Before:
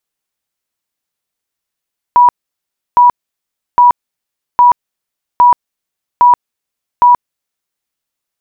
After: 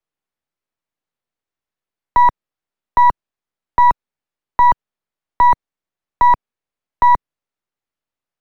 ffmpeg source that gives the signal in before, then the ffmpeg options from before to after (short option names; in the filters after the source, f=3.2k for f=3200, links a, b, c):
-f lavfi -i "aevalsrc='0.75*sin(2*PI*974*mod(t,0.81))*lt(mod(t,0.81),125/974)':d=5.67:s=44100"
-filter_complex "[0:a]aeval=exprs='if(lt(val(0),0),0.447*val(0),val(0))':c=same,lowpass=f=1.6k:p=1,acrossover=split=140|330|790[a][b][c][d];[a]acrusher=samples=26:mix=1:aa=0.000001:lfo=1:lforange=15.6:lforate=3.9[e];[e][b][c][d]amix=inputs=4:normalize=0"